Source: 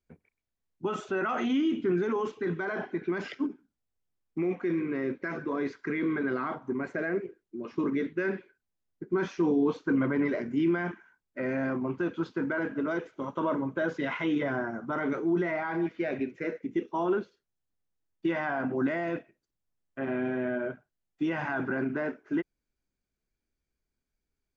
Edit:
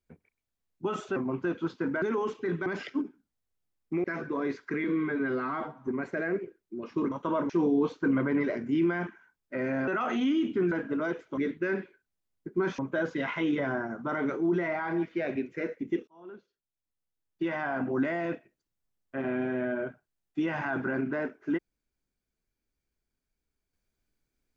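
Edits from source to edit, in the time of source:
0:01.16–0:02.00: swap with 0:11.72–0:12.58
0:02.64–0:03.11: remove
0:04.49–0:05.20: remove
0:06.00–0:06.69: time-stretch 1.5×
0:07.93–0:09.34: swap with 0:13.24–0:13.62
0:16.91–0:18.67: fade in

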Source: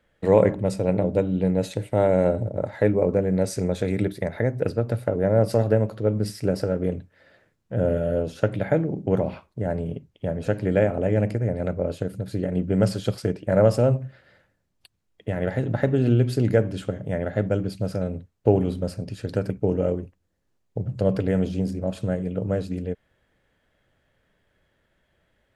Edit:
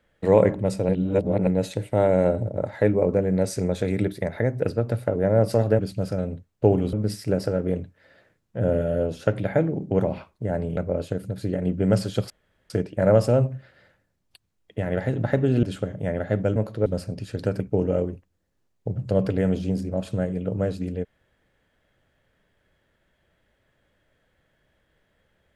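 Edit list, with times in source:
0:00.89–0:01.47: reverse
0:05.79–0:06.09: swap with 0:17.62–0:18.76
0:09.93–0:11.67: remove
0:13.20: splice in room tone 0.40 s
0:16.13–0:16.69: remove

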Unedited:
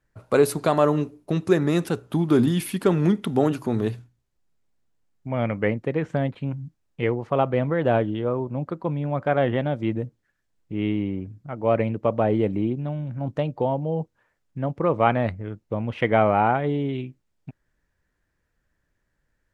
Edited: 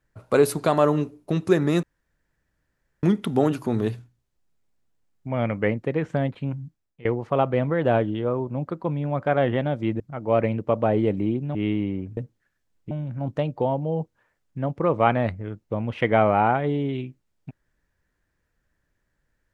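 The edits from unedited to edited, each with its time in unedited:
0:01.83–0:03.03: fill with room tone
0:06.57–0:07.05: fade out, to −23 dB
0:10.00–0:10.74: swap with 0:11.36–0:12.91

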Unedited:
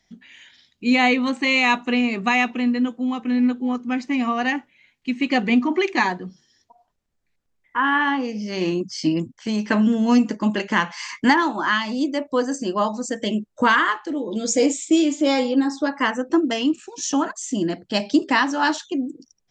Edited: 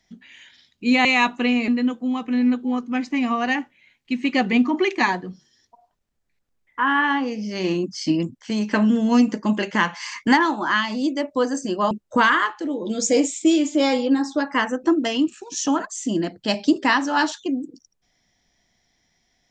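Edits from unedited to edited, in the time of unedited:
0:01.05–0:01.53: remove
0:02.16–0:02.65: remove
0:12.88–0:13.37: remove

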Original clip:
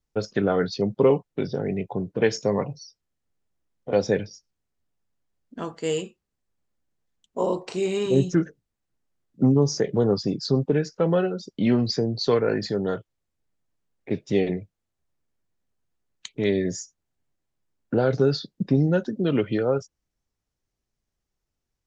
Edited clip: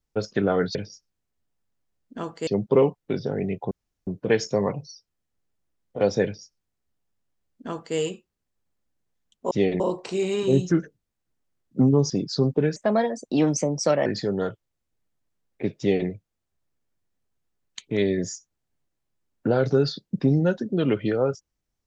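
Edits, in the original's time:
0:01.99: splice in room tone 0.36 s
0:04.16–0:05.88: duplicate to 0:00.75
0:09.73–0:10.22: remove
0:10.88–0:12.53: play speed 127%
0:14.26–0:14.55: duplicate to 0:07.43

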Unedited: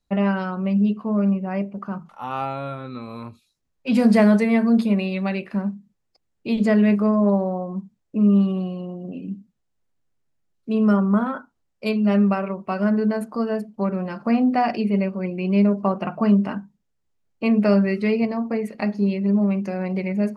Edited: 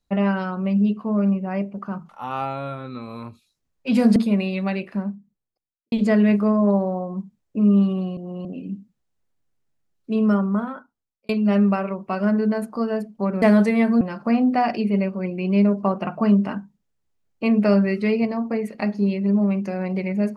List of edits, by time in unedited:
0:04.16–0:04.75: move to 0:14.01
0:05.25–0:06.51: fade out and dull
0:08.76–0:09.04: reverse
0:10.76–0:11.88: fade out linear

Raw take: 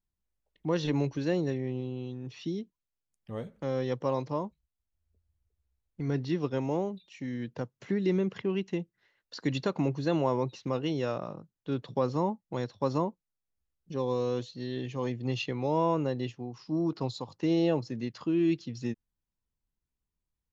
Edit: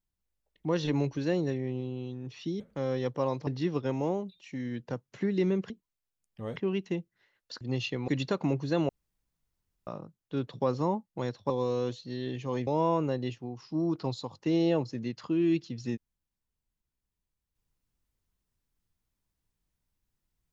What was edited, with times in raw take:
0:02.60–0:03.46: move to 0:08.38
0:04.33–0:06.15: remove
0:10.24–0:11.22: fill with room tone
0:12.85–0:14.00: remove
0:15.17–0:15.64: move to 0:09.43

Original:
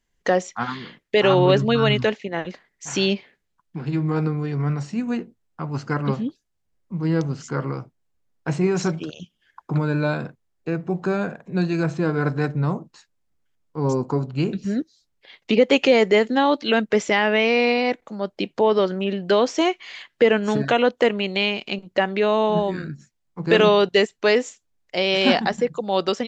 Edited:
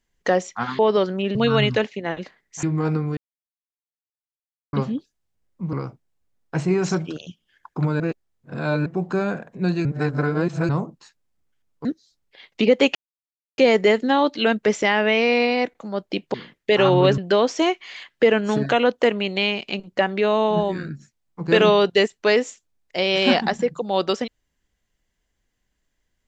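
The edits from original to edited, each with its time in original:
0:00.79–0:01.63: swap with 0:18.61–0:19.17
0:02.91–0:03.94: remove
0:04.48–0:06.04: silence
0:07.04–0:07.66: remove
0:09.93–0:10.79: reverse
0:11.78–0:12.62: reverse
0:13.78–0:14.75: remove
0:15.85: splice in silence 0.63 s

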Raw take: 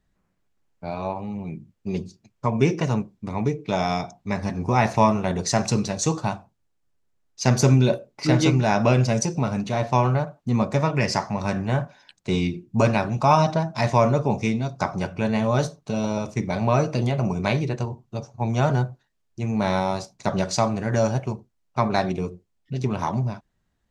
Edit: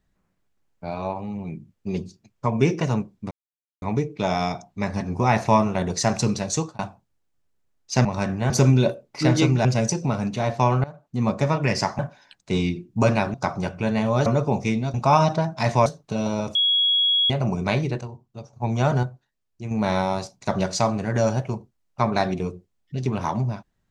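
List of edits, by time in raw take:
0:03.31: splice in silence 0.51 s
0:06.02–0:06.28: fade out
0:08.69–0:08.98: remove
0:10.17–0:10.64: fade in, from −18 dB
0:11.32–0:11.77: move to 0:07.54
0:13.12–0:14.04: swap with 0:14.72–0:15.64
0:16.33–0:17.08: beep over 3,330 Hz −16.5 dBFS
0:17.79–0:18.31: clip gain −7.5 dB
0:18.81–0:19.49: clip gain −5 dB

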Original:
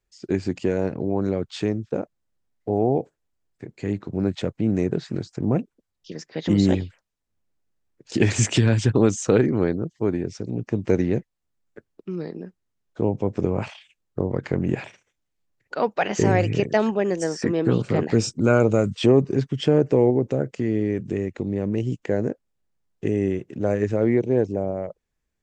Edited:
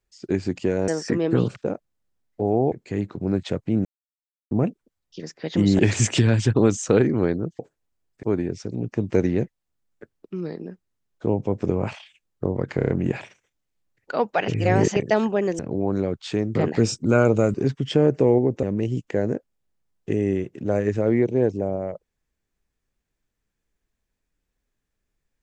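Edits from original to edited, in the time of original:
0:00.88–0:01.84: swap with 0:17.22–0:17.90
0:03.00–0:03.64: move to 0:09.98
0:04.77–0:05.43: silence
0:06.71–0:08.18: remove
0:14.52: stutter 0.03 s, 5 plays
0:16.11–0:16.59: reverse
0:18.89–0:19.26: remove
0:20.35–0:21.58: remove

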